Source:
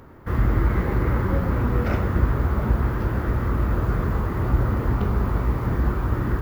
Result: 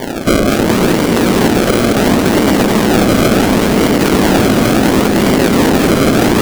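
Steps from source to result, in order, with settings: square wave that keeps the level; high-pass 220 Hz 24 dB/octave; peaking EQ 950 Hz -12.5 dB 1.2 oct; compressor with a negative ratio -30 dBFS, ratio -0.5; decimation with a swept rate 33×, swing 100% 0.71 Hz; hard clipper -21.5 dBFS, distortion -13 dB; echo whose repeats swap between lows and highs 106 ms, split 1.1 kHz, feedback 83%, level -5 dB; loudness maximiser +24.5 dB; trim -1 dB

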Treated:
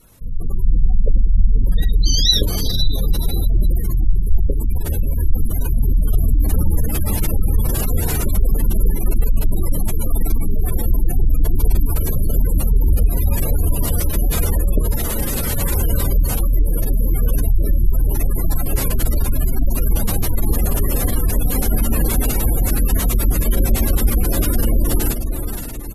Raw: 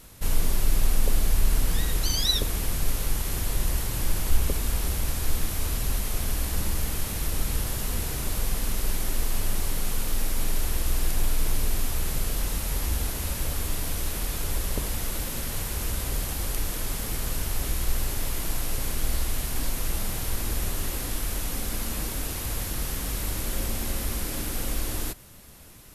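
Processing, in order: doubling 27 ms -10 dB; level rider gain up to 15.5 dB; on a send: echo that smears into a reverb 483 ms, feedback 41%, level -7 dB; on the sum: spectral gate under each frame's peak -25 dB strong; trim -1 dB

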